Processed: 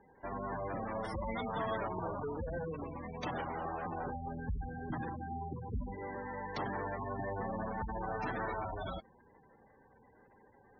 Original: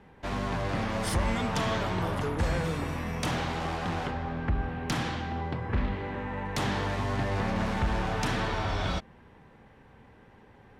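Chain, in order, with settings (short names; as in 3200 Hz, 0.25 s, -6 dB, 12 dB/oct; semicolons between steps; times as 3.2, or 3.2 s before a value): 4–5.82 low shelf 200 Hz +5.5 dB; spectral gate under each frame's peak -15 dB strong; LPF 5300 Hz; tone controls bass -10 dB, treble -1 dB; gain -4 dB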